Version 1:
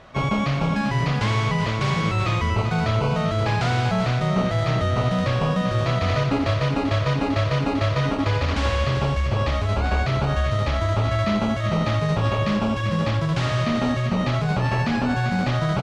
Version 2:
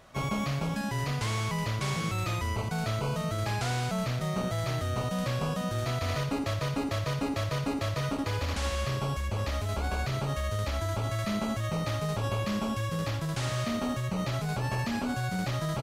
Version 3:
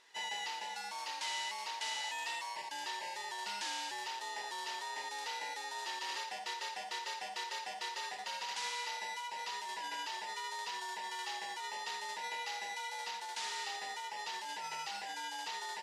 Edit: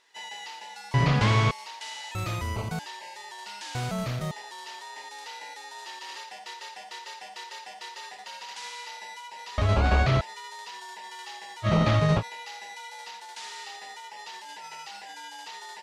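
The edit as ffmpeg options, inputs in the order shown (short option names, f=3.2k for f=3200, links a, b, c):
-filter_complex "[0:a]asplit=3[a][b][c];[1:a]asplit=2[d][e];[2:a]asplit=6[f][g][h][i][j][k];[f]atrim=end=0.942[l];[a]atrim=start=0.938:end=1.512[m];[g]atrim=start=1.508:end=2.152[n];[d]atrim=start=2.148:end=2.792[o];[h]atrim=start=2.788:end=3.752[p];[e]atrim=start=3.748:end=4.312[q];[i]atrim=start=4.308:end=9.582[r];[b]atrim=start=9.578:end=10.212[s];[j]atrim=start=10.208:end=11.68[t];[c]atrim=start=11.62:end=12.23[u];[k]atrim=start=12.17[v];[l][m]acrossfade=d=0.004:c1=hsin:c2=hsin[w];[w][n]acrossfade=d=0.004:c1=hsin:c2=hsin[x];[x][o]acrossfade=d=0.004:c1=hsin:c2=hsin[y];[y][p]acrossfade=d=0.004:c1=hsin:c2=hsin[z];[z][q]acrossfade=d=0.004:c1=hsin:c2=hsin[aa];[aa][r]acrossfade=d=0.004:c1=hsin:c2=hsin[ab];[ab][s]acrossfade=d=0.004:c1=hsin:c2=hsin[ac];[ac][t]acrossfade=d=0.004:c1=hsin:c2=hsin[ad];[ad][u]acrossfade=d=0.06:c1=tri:c2=tri[ae];[ae][v]acrossfade=d=0.06:c1=tri:c2=tri"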